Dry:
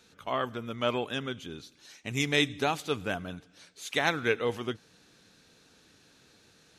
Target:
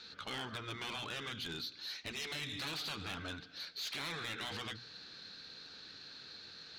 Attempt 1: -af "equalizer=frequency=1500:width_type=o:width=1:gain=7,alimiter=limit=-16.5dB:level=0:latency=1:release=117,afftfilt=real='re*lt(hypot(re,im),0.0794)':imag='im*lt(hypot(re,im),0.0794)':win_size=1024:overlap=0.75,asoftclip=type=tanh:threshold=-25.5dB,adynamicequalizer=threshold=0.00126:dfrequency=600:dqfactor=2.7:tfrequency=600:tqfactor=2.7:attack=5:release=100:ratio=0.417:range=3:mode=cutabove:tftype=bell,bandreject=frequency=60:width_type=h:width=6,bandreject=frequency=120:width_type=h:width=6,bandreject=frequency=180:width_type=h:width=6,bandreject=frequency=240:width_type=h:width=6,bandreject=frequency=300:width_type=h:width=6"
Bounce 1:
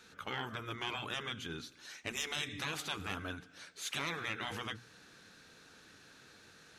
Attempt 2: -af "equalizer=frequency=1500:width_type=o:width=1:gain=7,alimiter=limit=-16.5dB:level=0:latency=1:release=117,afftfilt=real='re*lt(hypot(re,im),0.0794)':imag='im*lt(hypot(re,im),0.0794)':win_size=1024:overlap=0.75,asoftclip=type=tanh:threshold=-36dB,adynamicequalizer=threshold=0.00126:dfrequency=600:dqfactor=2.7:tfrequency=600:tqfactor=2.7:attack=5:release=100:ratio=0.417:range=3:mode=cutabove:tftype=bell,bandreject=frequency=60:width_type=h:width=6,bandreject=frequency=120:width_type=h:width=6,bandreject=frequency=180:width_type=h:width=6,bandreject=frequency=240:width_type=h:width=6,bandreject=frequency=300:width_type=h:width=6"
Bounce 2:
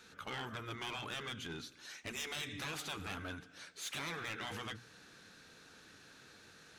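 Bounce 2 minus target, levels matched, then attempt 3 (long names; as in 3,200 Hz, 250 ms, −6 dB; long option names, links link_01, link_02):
4,000 Hz band −4.0 dB
-af "lowpass=frequency=4300:width_type=q:width=6.4,equalizer=frequency=1500:width_type=o:width=1:gain=7,alimiter=limit=-16.5dB:level=0:latency=1:release=117,afftfilt=real='re*lt(hypot(re,im),0.0794)':imag='im*lt(hypot(re,im),0.0794)':win_size=1024:overlap=0.75,asoftclip=type=tanh:threshold=-36dB,adynamicequalizer=threshold=0.00126:dfrequency=600:dqfactor=2.7:tfrequency=600:tqfactor=2.7:attack=5:release=100:ratio=0.417:range=3:mode=cutabove:tftype=bell,bandreject=frequency=60:width_type=h:width=6,bandreject=frequency=120:width_type=h:width=6,bandreject=frequency=180:width_type=h:width=6,bandreject=frequency=240:width_type=h:width=6,bandreject=frequency=300:width_type=h:width=6"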